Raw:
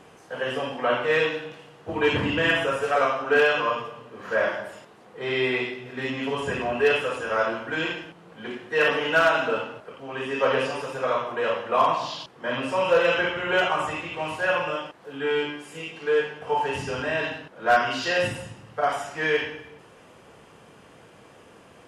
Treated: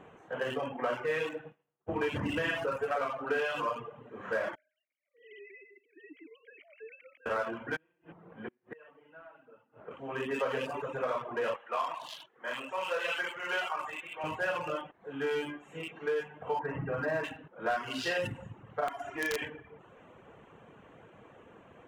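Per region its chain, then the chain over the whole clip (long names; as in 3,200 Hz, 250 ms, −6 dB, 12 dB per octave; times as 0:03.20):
0:00.64–0:03.02: downward expander −35 dBFS + parametric band 3,800 Hz −4 dB 0.6 octaves
0:04.55–0:07.26: three sine waves on the formant tracks + formant filter i + downward compressor 3 to 1, threshold −43 dBFS
0:07.76–0:09.91: high-frequency loss of the air 380 metres + gate with flip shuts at −27 dBFS, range −27 dB
0:11.56–0:14.24: high-pass filter 1,400 Hz 6 dB per octave + double-tracking delay 22 ms −13 dB
0:16.59–0:17.24: low-pass filter 1,900 Hz 24 dB per octave + comb filter 6.3 ms
0:18.88–0:19.42: comb filter 2.9 ms, depth 82% + downward compressor 2 to 1, threshold −28 dBFS + wrap-around overflow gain 18.5 dB
whole clip: adaptive Wiener filter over 9 samples; reverb reduction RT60 0.55 s; downward compressor, threshold −26 dBFS; level −2.5 dB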